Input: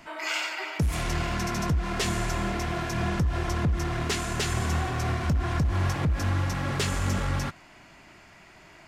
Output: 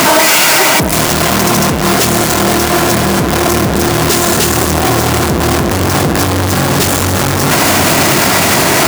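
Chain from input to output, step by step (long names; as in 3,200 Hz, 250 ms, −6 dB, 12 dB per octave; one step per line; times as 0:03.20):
sign of each sample alone
high-pass filter 140 Hz 12 dB per octave
parametric band 2,300 Hz −6 dB 2 octaves
on a send: delay with a low-pass on its return 684 ms, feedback 73%, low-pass 2,600 Hz, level −9.5 dB
on the sum: boost into a limiter +28.5 dB
level −1 dB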